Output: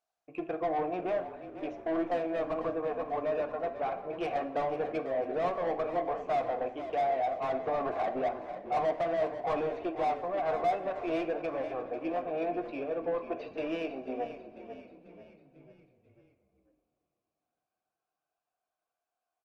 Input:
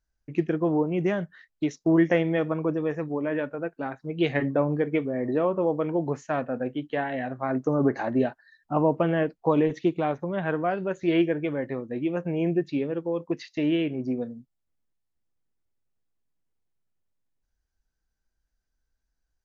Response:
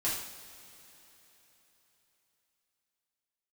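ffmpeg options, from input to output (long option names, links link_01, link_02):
-filter_complex "[0:a]asplit=3[link_01][link_02][link_03];[link_01]bandpass=frequency=730:width_type=q:width=8,volume=0dB[link_04];[link_02]bandpass=frequency=1090:width_type=q:width=8,volume=-6dB[link_05];[link_03]bandpass=frequency=2440:width_type=q:width=8,volume=-9dB[link_06];[link_04][link_05][link_06]amix=inputs=3:normalize=0,asplit=2[link_07][link_08];[link_08]highpass=frequency=720:poles=1,volume=27dB,asoftclip=type=tanh:threshold=-19dB[link_09];[link_07][link_09]amix=inputs=2:normalize=0,lowpass=frequency=1200:poles=1,volume=-6dB,asplit=6[link_10][link_11][link_12][link_13][link_14][link_15];[link_11]adelay=493,afreqshift=-37,volume=-11dB[link_16];[link_12]adelay=986,afreqshift=-74,volume=-16.8dB[link_17];[link_13]adelay=1479,afreqshift=-111,volume=-22.7dB[link_18];[link_14]adelay=1972,afreqshift=-148,volume=-28.5dB[link_19];[link_15]adelay=2465,afreqshift=-185,volume=-34.4dB[link_20];[link_10][link_16][link_17][link_18][link_19][link_20]amix=inputs=6:normalize=0,asplit=2[link_21][link_22];[1:a]atrim=start_sample=2205,highshelf=frequency=2800:gain=-8.5[link_23];[link_22][link_23]afir=irnorm=-1:irlink=0,volume=-10.5dB[link_24];[link_21][link_24]amix=inputs=2:normalize=0,volume=-5dB" -ar 48000 -c:a libopus -b:a 24k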